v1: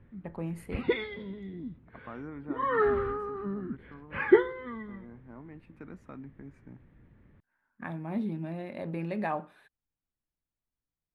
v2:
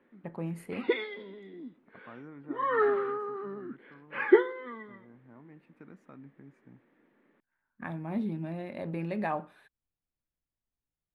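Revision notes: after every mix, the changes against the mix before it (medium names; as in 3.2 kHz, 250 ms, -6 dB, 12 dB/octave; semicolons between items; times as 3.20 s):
second voice -5.5 dB; background: add high-pass 270 Hz 24 dB/octave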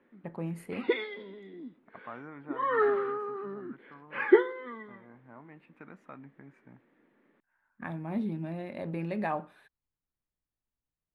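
second voice: add high-order bell 1.4 kHz +8 dB 2.9 oct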